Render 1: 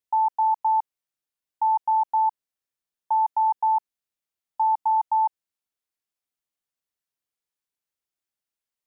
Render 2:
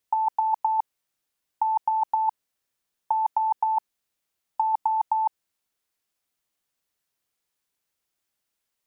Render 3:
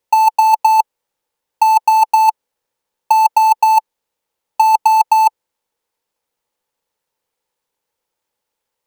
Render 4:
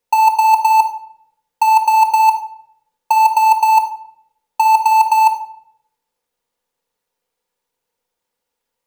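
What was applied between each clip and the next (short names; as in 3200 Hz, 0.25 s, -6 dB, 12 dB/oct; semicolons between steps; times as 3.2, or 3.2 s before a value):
negative-ratio compressor -24 dBFS, ratio -0.5; gain +3 dB
half-waves squared off; small resonant body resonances 500/870 Hz, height 12 dB, ringing for 25 ms; gain -1 dB
reverb RT60 0.70 s, pre-delay 4 ms, DRR 3.5 dB; gain -1.5 dB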